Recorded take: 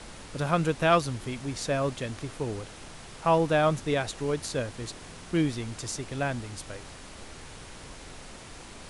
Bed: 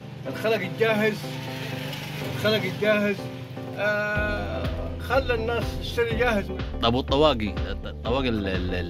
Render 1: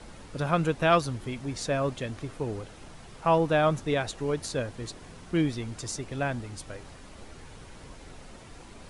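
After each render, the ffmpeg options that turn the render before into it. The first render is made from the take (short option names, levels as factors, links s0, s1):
-af "afftdn=nr=7:nf=-46"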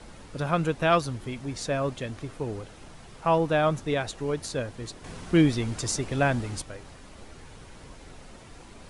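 -filter_complex "[0:a]asettb=1/sr,asplit=3[s0][s1][s2];[s0]atrim=end=5.044[s3];[s1]atrim=start=5.04:end=6.62,asetpts=PTS-STARTPTS,afade=t=in:d=0.004:c=qsin,afade=t=out:st=1.576:d=0.004:c=qsin,acontrast=54[s4];[s2]atrim=start=6.616[s5];[s3][s4]acrossfade=d=0.004:c1=hsin:c2=qsin[s6];[s6][s5]acrossfade=d=0.004:c1=qsin:c2=hsin"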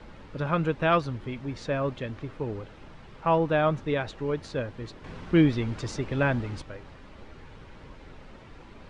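-af "lowpass=3200,bandreject=f=710:w=12"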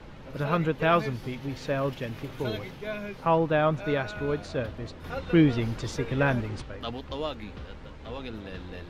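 -filter_complex "[1:a]volume=0.211[s0];[0:a][s0]amix=inputs=2:normalize=0"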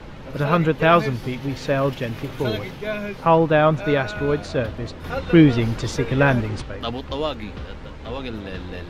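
-af "volume=2.37"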